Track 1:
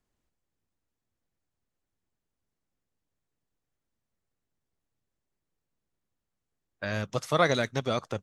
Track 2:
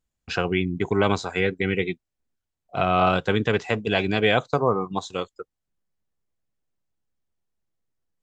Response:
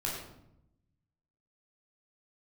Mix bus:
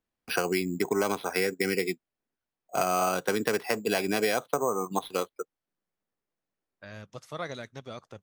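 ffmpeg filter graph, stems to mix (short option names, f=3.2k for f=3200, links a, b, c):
-filter_complex "[0:a]volume=-12.5dB[a];[1:a]acrossover=split=190 3700:gain=0.0891 1 0.1[b][c][d];[b][c][d]amix=inputs=3:normalize=0,acrusher=samples=6:mix=1:aa=0.000001,volume=1.5dB[e];[a][e]amix=inputs=2:normalize=0,acompressor=threshold=-23dB:ratio=6"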